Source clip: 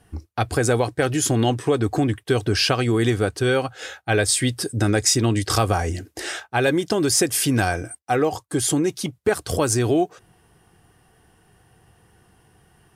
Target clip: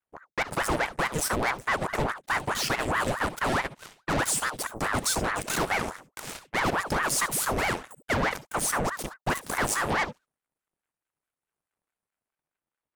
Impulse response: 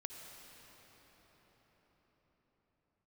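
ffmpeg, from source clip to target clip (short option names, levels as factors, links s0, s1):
-filter_complex "[0:a]equalizer=f=100:t=o:w=0.67:g=-7,equalizer=f=630:t=o:w=0.67:g=9,equalizer=f=4000:t=o:w=0.67:g=-10,acrossover=split=4000[s0][s1];[s1]dynaudnorm=f=230:g=9:m=2.11[s2];[s0][s2]amix=inputs=2:normalize=0,asoftclip=type=tanh:threshold=0.224,aeval=exprs='0.224*(cos(1*acos(clip(val(0)/0.224,-1,1)))-cos(1*PI/2))+0.01*(cos(3*acos(clip(val(0)/0.224,-1,1)))-cos(3*PI/2))+0.0398*(cos(6*acos(clip(val(0)/0.224,-1,1)))-cos(6*PI/2))+0.0282*(cos(7*acos(clip(val(0)/0.224,-1,1)))-cos(7*PI/2))':c=same[s3];[1:a]atrim=start_sample=2205,atrim=end_sample=3087,asetrate=39249,aresample=44100[s4];[s3][s4]afir=irnorm=-1:irlink=0,aeval=exprs='val(0)*sin(2*PI*850*n/s+850*0.85/4.7*sin(2*PI*4.7*n/s))':c=same"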